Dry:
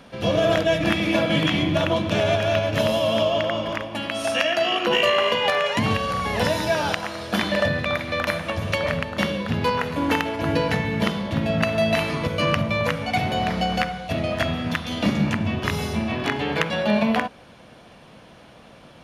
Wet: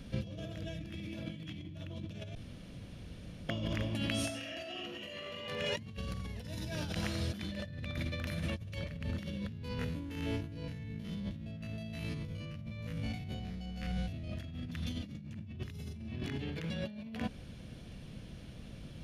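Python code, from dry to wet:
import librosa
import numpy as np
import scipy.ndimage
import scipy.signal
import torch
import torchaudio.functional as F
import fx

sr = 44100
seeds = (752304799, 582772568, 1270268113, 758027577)

y = fx.reverb_throw(x, sr, start_s=4.24, length_s=1.19, rt60_s=0.9, drr_db=-6.0)
y = fx.spec_steps(y, sr, hold_ms=50, at=(9.48, 14.28))
y = fx.edit(y, sr, fx.room_tone_fill(start_s=2.35, length_s=1.14), tone=tone)
y = fx.tone_stack(y, sr, knobs='10-0-1')
y = fx.over_compress(y, sr, threshold_db=-50.0, ratio=-1.0)
y = F.gain(torch.from_numpy(y), 9.5).numpy()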